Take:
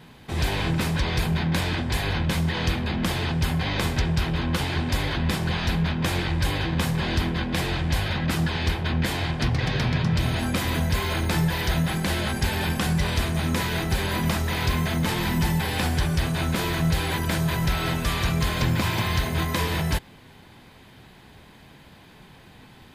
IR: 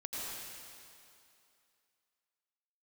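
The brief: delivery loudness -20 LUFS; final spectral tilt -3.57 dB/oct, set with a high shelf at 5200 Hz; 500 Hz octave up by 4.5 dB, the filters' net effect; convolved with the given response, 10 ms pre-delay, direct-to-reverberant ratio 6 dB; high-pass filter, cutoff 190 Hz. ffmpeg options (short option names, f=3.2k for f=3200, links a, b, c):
-filter_complex "[0:a]highpass=190,equalizer=f=500:t=o:g=6,highshelf=f=5.2k:g=-6,asplit=2[a][b];[1:a]atrim=start_sample=2205,adelay=10[c];[b][c]afir=irnorm=-1:irlink=0,volume=-8dB[d];[a][d]amix=inputs=2:normalize=0,volume=6.5dB"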